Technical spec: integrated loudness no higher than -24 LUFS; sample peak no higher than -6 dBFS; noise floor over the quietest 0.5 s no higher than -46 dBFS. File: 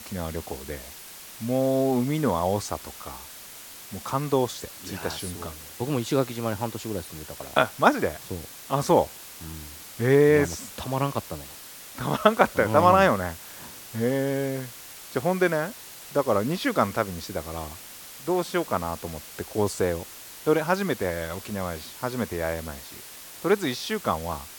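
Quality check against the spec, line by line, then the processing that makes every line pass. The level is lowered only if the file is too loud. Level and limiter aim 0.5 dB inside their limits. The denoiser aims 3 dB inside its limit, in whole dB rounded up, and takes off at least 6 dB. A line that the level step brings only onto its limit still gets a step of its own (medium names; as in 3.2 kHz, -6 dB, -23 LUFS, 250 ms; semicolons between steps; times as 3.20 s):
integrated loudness -26.0 LUFS: pass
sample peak -1.5 dBFS: fail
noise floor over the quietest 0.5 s -43 dBFS: fail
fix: noise reduction 6 dB, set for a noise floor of -43 dBFS; peak limiter -6.5 dBFS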